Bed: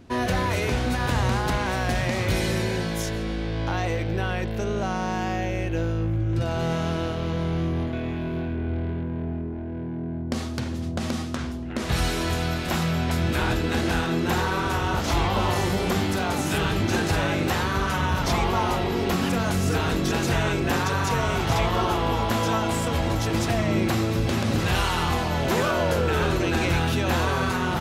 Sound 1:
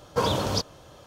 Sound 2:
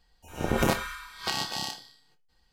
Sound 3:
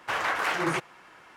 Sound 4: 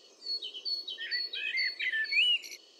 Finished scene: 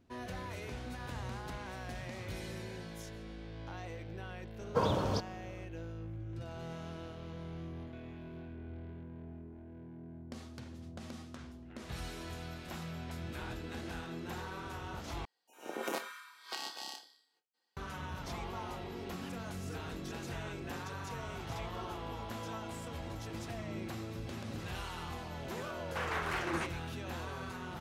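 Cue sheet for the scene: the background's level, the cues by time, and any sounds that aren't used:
bed −18.5 dB
0:04.59: mix in 1 −5 dB + high-shelf EQ 2,700 Hz −12 dB
0:15.25: overwrite with 2 −11 dB + high-pass filter 280 Hz 24 dB per octave
0:25.87: mix in 3 −9.5 dB
not used: 4

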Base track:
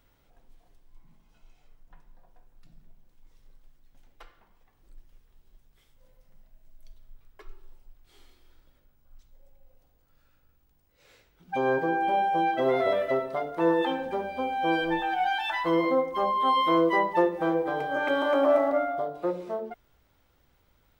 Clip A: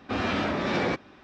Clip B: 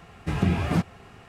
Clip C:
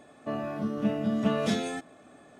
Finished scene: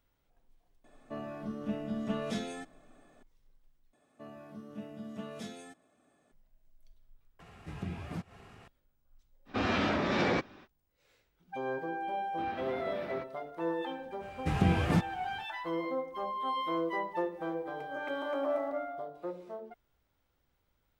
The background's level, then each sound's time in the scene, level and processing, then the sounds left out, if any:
base track −10.5 dB
0:00.84: mix in C −8 dB
0:03.93: overwrite with C −16 dB + high-shelf EQ 8,200 Hz +9.5 dB
0:07.40: overwrite with B −16 dB + upward compression, threshold −26 dBFS
0:09.45: mix in A −2.5 dB, fades 0.05 s
0:12.28: mix in A −17 dB + high-frequency loss of the air 170 metres
0:14.19: mix in B −4 dB, fades 0.05 s

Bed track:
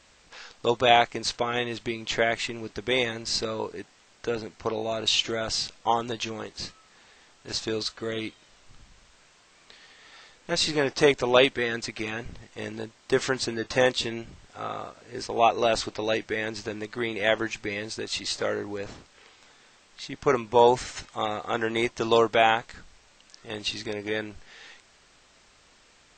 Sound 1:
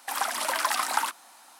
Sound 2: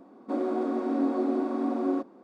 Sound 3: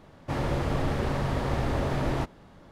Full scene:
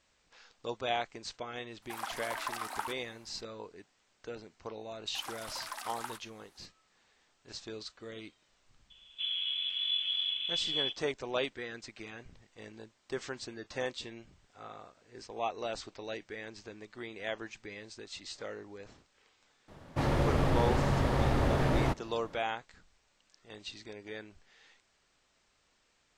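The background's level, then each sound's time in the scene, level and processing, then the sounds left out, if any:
bed track −14 dB
0:01.82: mix in 1 −10 dB + parametric band 8,600 Hz −6 dB 3 octaves
0:05.07: mix in 1 −16 dB
0:08.90: mix in 2 −6.5 dB + voice inversion scrambler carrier 3,700 Hz
0:19.68: mix in 3 −0.5 dB

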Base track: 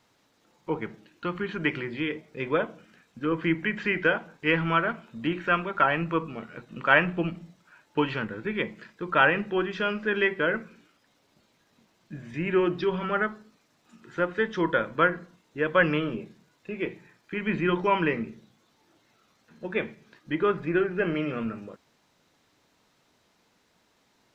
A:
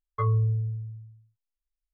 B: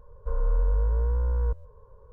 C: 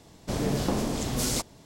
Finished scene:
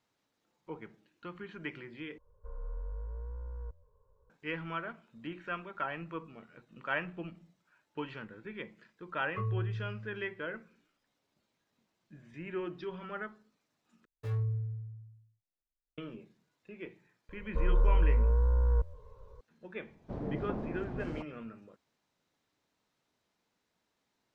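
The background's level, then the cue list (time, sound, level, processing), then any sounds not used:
base track −14 dB
0:02.18: overwrite with B −16.5 dB
0:09.18: mix in A −10 dB
0:14.05: overwrite with A −8.5 dB + running median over 41 samples
0:17.29: mix in B −1.5 dB
0:19.81: mix in C −9.5 dB + low-pass filter 1,100 Hz

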